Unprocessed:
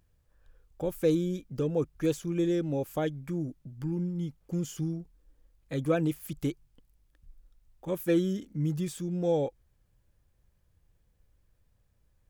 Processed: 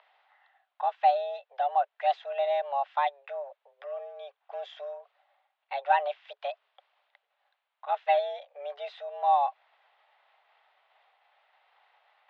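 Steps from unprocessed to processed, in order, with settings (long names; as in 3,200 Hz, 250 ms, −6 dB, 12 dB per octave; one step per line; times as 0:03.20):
reversed playback
upward compression, threshold −41 dBFS
reversed playback
single-sideband voice off tune +280 Hz 380–3,400 Hz
level +5 dB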